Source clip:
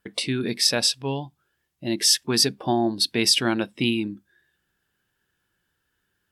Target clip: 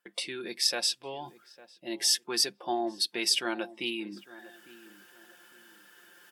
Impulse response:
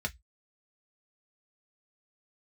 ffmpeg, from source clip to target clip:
-filter_complex "[0:a]highpass=410,areverse,acompressor=mode=upward:threshold=-29dB:ratio=2.5,areverse,bandreject=f=4k:w=18,aecho=1:1:5.7:0.51,asplit=2[a][b];[b]adelay=853,lowpass=f=1.3k:p=1,volume=-17.5dB,asplit=2[c][d];[d]adelay=853,lowpass=f=1.3k:p=1,volume=0.33,asplit=2[e][f];[f]adelay=853,lowpass=f=1.3k:p=1,volume=0.33[g];[a][c][e][g]amix=inputs=4:normalize=0,volume=-7.5dB"

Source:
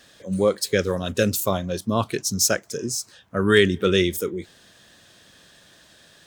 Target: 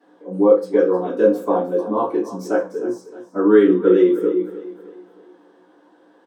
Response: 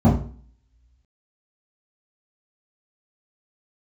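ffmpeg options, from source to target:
-filter_complex "[0:a]highpass=f=390:w=0.5412,highpass=f=390:w=1.3066,aecho=1:1:309|618|927|1236:0.178|0.0729|0.0299|0.0123[a];[1:a]atrim=start_sample=2205,asetrate=57330,aresample=44100[b];[a][b]afir=irnorm=-1:irlink=0,volume=-16.5dB"

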